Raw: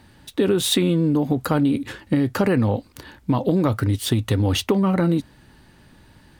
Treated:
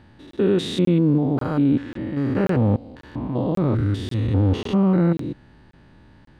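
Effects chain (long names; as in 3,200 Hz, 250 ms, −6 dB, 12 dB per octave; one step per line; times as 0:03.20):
spectrum averaged block by block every 200 ms
head-to-tape spacing loss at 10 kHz 20 dB
regular buffer underruns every 0.54 s, samples 1,024, zero, from 0:00.31
level +3 dB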